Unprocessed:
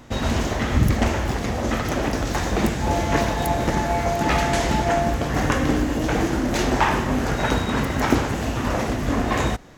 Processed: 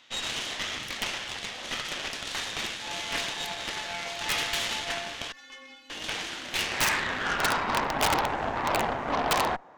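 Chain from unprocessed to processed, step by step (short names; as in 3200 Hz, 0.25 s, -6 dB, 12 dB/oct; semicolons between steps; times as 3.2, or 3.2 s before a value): 5.32–5.9 metallic resonator 260 Hz, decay 0.42 s, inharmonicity 0.008; band-pass sweep 3300 Hz -> 880 Hz, 6.47–7.86; wrapped overs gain 21 dB; added harmonics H 6 -14 dB, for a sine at -21 dBFS; gain +4 dB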